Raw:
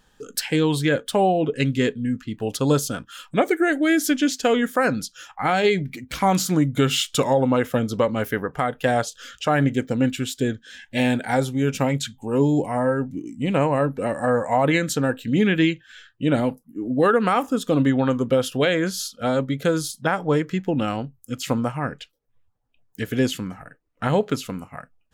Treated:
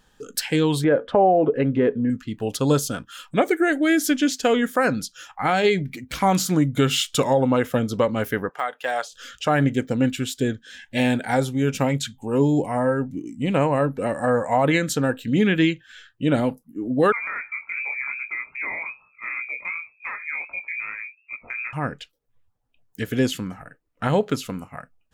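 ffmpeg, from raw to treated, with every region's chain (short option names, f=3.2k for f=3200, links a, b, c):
-filter_complex "[0:a]asettb=1/sr,asplit=3[a][b][c];[a]atrim=end=0.844[d];[b]atrim=start=0.84:end=2.1,asetpts=PTS-STARTPTS,afade=t=in:d=0.004:c=qsin,afade=t=out:st=1.256:d=0.004:c=qsin,equalizer=f=620:w=0.47:g=13,acompressor=threshold=-20dB:ratio=2:attack=3.2:release=140:knee=1:detection=peak,lowpass=1.8k[e];[c]atrim=start=2.096[f];[d][e]acrossfade=d=0.004:c1=hsin:c2=qsin[g];[g][f]acrossfade=d=0.004:c1=qsin:c2=hsin,asettb=1/sr,asplit=3[h][i][j];[h]atrim=end=8.494[k];[i]atrim=start=8.49:end=9.13,asetpts=PTS-STARTPTS,afade=t=in:d=0.004:c=qsin,afade=t=out:st=0.636:d=0.004:c=qsin,deesser=0.7,highpass=730,highshelf=f=9k:g=-8[l];[j]atrim=start=9.126[m];[k][l]acrossfade=d=0.004:c1=hsin:c2=qsin[n];[n][m]acrossfade=d=0.004:c1=qsin:c2=hsin,asettb=1/sr,asplit=3[o][p][q];[o]atrim=end=17.124[r];[p]atrim=start=17.12:end=21.73,asetpts=PTS-STARTPTS,afade=t=in:d=0.004:c=qsin,afade=t=out:st=4.606:d=0.004:c=qsin,lowpass=f=2.2k:t=q:w=0.5098,lowpass=f=2.2k:t=q:w=0.6013,lowpass=f=2.2k:t=q:w=0.9,lowpass=f=2.2k:t=q:w=2.563,afreqshift=-2600,acompressor=threshold=-28dB:ratio=2:attack=3.2:release=140:knee=1:detection=peak,flanger=delay=17:depth=7.1:speed=2.6[s];[q]atrim=start=21.726[t];[r][s]acrossfade=d=0.004:c1=hsin:c2=qsin[u];[u][t]acrossfade=d=0.004:c1=qsin:c2=hsin"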